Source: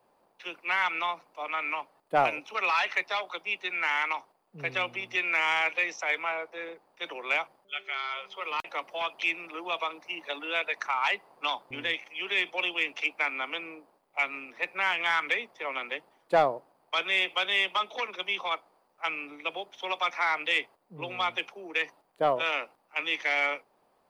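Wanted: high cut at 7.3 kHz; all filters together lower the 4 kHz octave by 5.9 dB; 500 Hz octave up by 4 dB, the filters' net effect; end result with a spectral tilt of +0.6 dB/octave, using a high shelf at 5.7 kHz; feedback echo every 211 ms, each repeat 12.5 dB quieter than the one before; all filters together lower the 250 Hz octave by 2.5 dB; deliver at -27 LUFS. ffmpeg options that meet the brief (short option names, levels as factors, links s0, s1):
-af "lowpass=7300,equalizer=f=250:t=o:g=-8.5,equalizer=f=500:t=o:g=7,equalizer=f=4000:t=o:g=-6,highshelf=f=5700:g=-6.5,aecho=1:1:211|422|633:0.237|0.0569|0.0137,volume=1.41"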